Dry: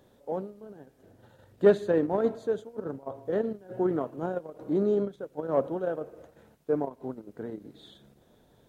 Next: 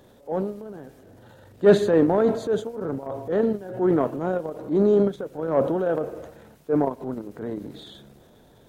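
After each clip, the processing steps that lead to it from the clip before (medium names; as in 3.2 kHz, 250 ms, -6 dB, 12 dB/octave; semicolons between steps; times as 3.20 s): transient shaper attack -7 dB, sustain +6 dB; trim +7.5 dB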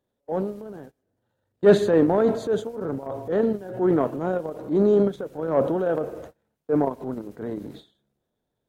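gate -40 dBFS, range -26 dB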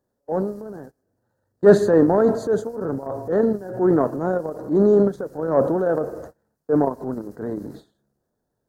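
high-order bell 2.8 kHz -14.5 dB 1 oct; trim +3 dB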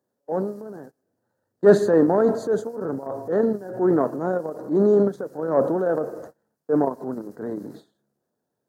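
high-pass 150 Hz 12 dB/octave; trim -1.5 dB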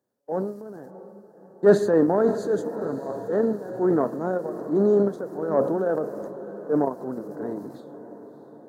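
echo that smears into a reverb 635 ms, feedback 58%, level -14.5 dB; trim -2 dB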